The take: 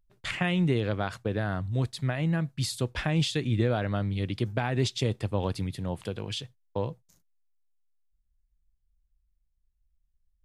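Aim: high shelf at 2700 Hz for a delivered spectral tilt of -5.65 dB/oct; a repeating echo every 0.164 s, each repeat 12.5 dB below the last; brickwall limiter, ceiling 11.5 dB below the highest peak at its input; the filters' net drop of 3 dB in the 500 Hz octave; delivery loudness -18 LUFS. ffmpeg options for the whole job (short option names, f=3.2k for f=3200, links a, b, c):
-af "equalizer=f=500:t=o:g=-3.5,highshelf=f=2.7k:g=-6.5,alimiter=level_in=1.5dB:limit=-24dB:level=0:latency=1,volume=-1.5dB,aecho=1:1:164|328|492:0.237|0.0569|0.0137,volume=17.5dB"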